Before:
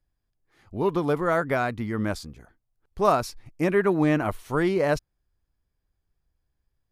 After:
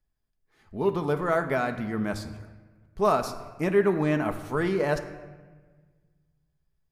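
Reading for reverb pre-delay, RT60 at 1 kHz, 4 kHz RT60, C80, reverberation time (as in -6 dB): 5 ms, 1.3 s, 0.85 s, 12.5 dB, 1.4 s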